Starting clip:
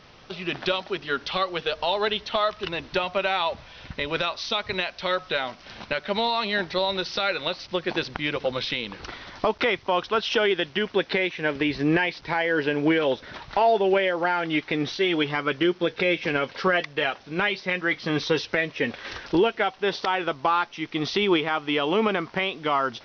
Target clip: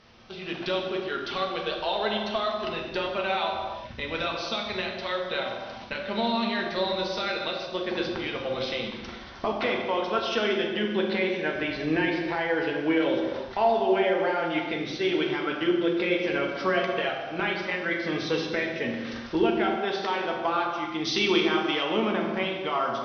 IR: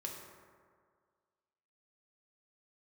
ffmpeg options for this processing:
-filter_complex "[0:a]asettb=1/sr,asplit=3[link_01][link_02][link_03];[link_01]atrim=end=21.044[link_04];[link_02]atrim=start=21.04:end=21.83,asetpts=PTS-STARTPTS,afade=type=in:duration=0.004:curve=qsin,afade=type=out:start_time=0.786:duration=0.004:curve=qsin,aemphasis=mode=production:type=75kf[link_05];[link_03]atrim=start=21.826[link_06];[link_04][link_05]acrossfade=duration=0.004:curve1=hsin:curve2=qsin[link_07];[link_07][link_06]acrossfade=duration=0.004:curve1=qsin:curve2=hsin[link_08];[1:a]atrim=start_sample=2205,afade=type=out:start_time=0.29:duration=0.01,atrim=end_sample=13230,asetrate=26901,aresample=44100[link_09];[link_08][link_09]afir=irnorm=-1:irlink=0,volume=-4.5dB"

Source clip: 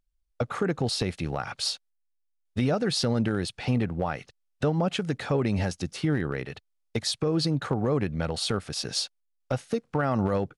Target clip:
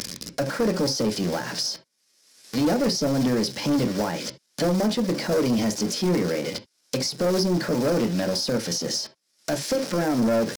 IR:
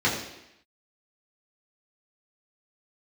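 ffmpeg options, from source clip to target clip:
-filter_complex "[0:a]aeval=exprs='val(0)+0.5*0.0188*sgn(val(0))':channel_layout=same,aresample=22050,aresample=44100,acrusher=bits=6:mix=0:aa=0.5,acrossover=split=840[link_01][link_02];[link_02]acompressor=threshold=-40dB:ratio=12[link_03];[link_01][link_03]amix=inputs=2:normalize=0,highpass=190,acrusher=bits=4:mode=log:mix=0:aa=0.000001,equalizer=frequency=4500:width_type=o:width=0.55:gain=9.5,acompressor=mode=upward:threshold=-34dB:ratio=2.5,equalizer=frequency=770:width_type=o:width=1.2:gain=-8,asplit=2[link_04][link_05];[1:a]atrim=start_sample=2205,atrim=end_sample=3528,lowpass=3100[link_06];[link_05][link_06]afir=irnorm=-1:irlink=0,volume=-19.5dB[link_07];[link_04][link_07]amix=inputs=2:normalize=0,asoftclip=type=tanh:threshold=-25.5dB,asetrate=50951,aresample=44100,atempo=0.865537,volume=8.5dB"

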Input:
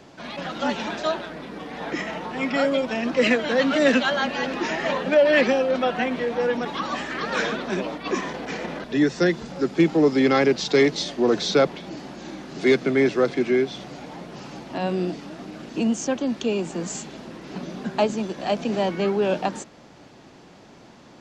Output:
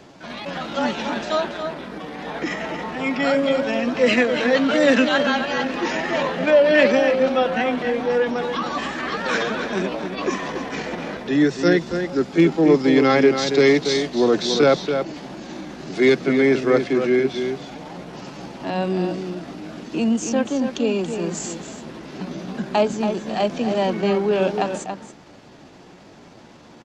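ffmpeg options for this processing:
ffmpeg -i in.wav -filter_complex "[0:a]atempo=0.79,asplit=2[link_01][link_02];[link_02]adelay=279.9,volume=-7dB,highshelf=frequency=4000:gain=-6.3[link_03];[link_01][link_03]amix=inputs=2:normalize=0,volume=2dB" out.wav

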